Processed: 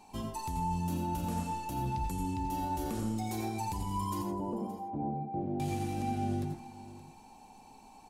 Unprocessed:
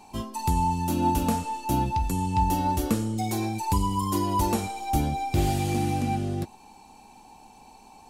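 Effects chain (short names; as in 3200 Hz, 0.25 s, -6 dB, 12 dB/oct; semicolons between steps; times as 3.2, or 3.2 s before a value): 4.22–5.6 Chebyshev band-pass 170–620 Hz, order 2; limiter -22 dBFS, peak gain reduction 9.5 dB; echo 0.572 s -16 dB; reverb RT60 0.35 s, pre-delay 78 ms, DRR 3.5 dB; gain -6.5 dB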